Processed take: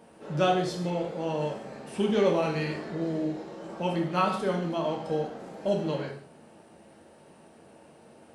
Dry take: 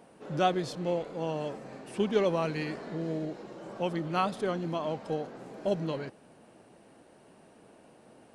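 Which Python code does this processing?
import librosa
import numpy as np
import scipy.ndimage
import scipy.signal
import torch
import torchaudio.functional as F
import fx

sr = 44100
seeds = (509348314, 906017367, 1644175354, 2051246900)

y = fx.rev_gated(x, sr, seeds[0], gate_ms=210, shape='falling', drr_db=0.0)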